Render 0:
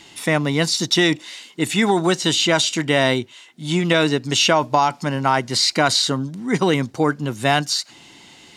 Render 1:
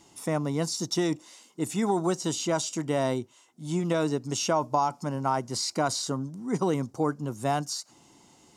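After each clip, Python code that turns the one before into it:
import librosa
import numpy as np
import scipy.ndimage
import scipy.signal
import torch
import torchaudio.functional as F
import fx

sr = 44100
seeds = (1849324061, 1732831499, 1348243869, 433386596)

y = fx.band_shelf(x, sr, hz=2600.0, db=-11.5, octaves=1.7)
y = y * 10.0 ** (-8.0 / 20.0)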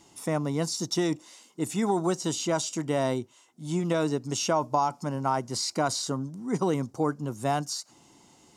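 y = x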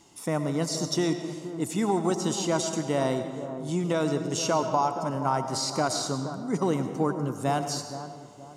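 y = fx.echo_bbd(x, sr, ms=474, stages=4096, feedback_pct=36, wet_db=-11.0)
y = fx.rev_freeverb(y, sr, rt60_s=1.6, hf_ratio=0.75, predelay_ms=60, drr_db=8.0)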